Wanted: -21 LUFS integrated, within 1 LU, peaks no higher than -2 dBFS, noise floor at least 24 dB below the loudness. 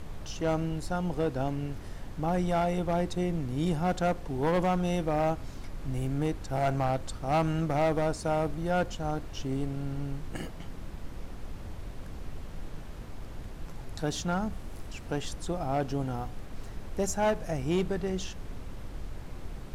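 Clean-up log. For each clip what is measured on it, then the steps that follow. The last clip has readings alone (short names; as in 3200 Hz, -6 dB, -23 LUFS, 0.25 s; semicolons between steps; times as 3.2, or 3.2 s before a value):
clipped 1.6%; flat tops at -21.5 dBFS; noise floor -42 dBFS; noise floor target -55 dBFS; loudness -31.0 LUFS; peak -21.5 dBFS; loudness target -21.0 LUFS
-> clip repair -21.5 dBFS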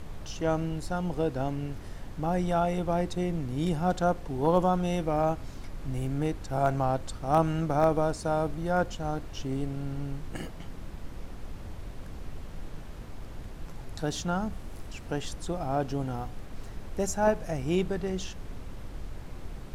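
clipped 0.0%; noise floor -42 dBFS; noise floor target -54 dBFS
-> noise print and reduce 12 dB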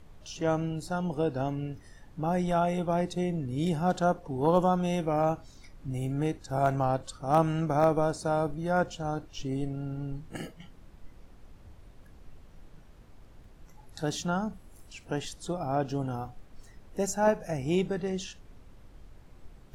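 noise floor -53 dBFS; noise floor target -54 dBFS
-> noise print and reduce 6 dB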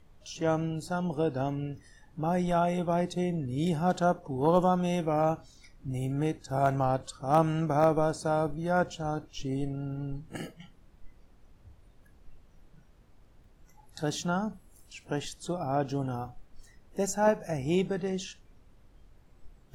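noise floor -59 dBFS; loudness -30.0 LUFS; peak -12.0 dBFS; loudness target -21.0 LUFS
-> gain +9 dB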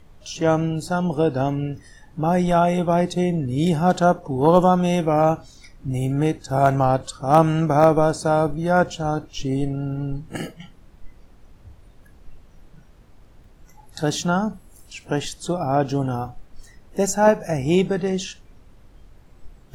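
loudness -21.0 LUFS; peak -3.0 dBFS; noise floor -50 dBFS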